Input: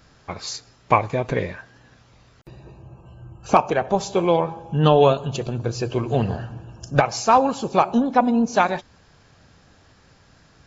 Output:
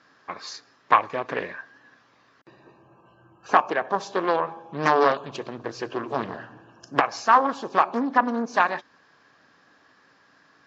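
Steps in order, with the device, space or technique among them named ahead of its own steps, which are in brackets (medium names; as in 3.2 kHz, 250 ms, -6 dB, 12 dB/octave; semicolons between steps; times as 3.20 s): full-range speaker at full volume (loudspeaker Doppler distortion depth 0.8 ms; cabinet simulation 260–6100 Hz, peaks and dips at 280 Hz +5 dB, 1.1 kHz +8 dB, 1.7 kHz +9 dB); trim -5.5 dB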